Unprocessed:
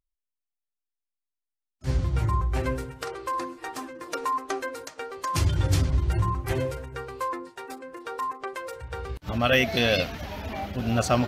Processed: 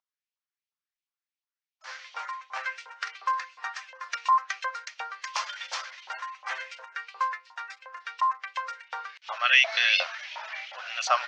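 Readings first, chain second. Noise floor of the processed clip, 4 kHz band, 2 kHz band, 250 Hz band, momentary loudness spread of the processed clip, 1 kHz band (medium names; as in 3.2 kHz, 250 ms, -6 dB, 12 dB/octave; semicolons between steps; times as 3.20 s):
under -85 dBFS, +3.0 dB, +4.5 dB, under -40 dB, 18 LU, +1.5 dB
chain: LFO high-pass saw up 2.8 Hz 880–3000 Hz; elliptic band-pass 550–6000 Hz, stop band 40 dB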